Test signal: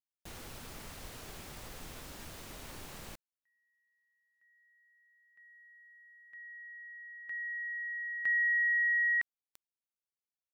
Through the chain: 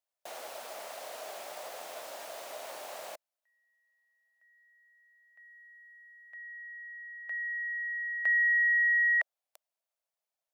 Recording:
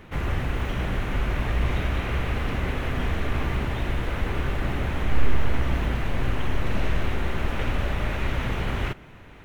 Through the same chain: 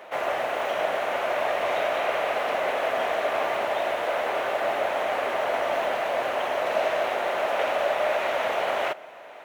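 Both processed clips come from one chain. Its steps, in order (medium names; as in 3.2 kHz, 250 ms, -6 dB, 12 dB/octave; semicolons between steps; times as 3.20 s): resonant high-pass 630 Hz, resonance Q 4.9; trim +2.5 dB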